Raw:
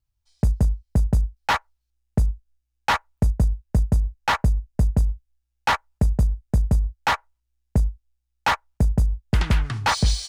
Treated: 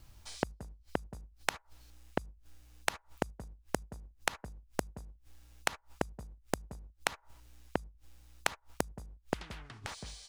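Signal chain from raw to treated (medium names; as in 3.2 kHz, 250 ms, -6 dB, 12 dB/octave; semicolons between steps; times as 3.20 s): inverted gate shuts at -23 dBFS, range -40 dB; tilt EQ -1.5 dB/octave; spectrum-flattening compressor 2:1; trim +9.5 dB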